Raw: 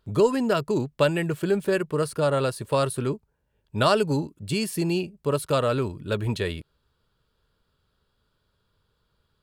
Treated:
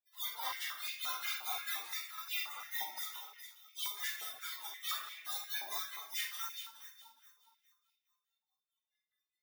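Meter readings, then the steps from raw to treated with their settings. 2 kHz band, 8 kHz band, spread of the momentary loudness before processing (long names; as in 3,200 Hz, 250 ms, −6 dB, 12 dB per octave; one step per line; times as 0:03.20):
−9.0 dB, −5.0 dB, 8 LU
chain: compressing power law on the bin magnitudes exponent 0.15
notch filter 3,600 Hz, Q 12
gate on every frequency bin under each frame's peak −25 dB weak
parametric band 8,100 Hz −4.5 dB 0.4 octaves
automatic gain control gain up to 13 dB
brickwall limiter −43 dBFS, peak gain reduction 11 dB
delay that swaps between a low-pass and a high-pass 208 ms, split 2,500 Hz, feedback 55%, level −6.5 dB
amplitude tremolo 4.7 Hz, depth 99%
rectangular room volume 120 cubic metres, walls mixed, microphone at 3 metres
high-pass on a step sequencer 5.7 Hz 800–2,300 Hz
level +6.5 dB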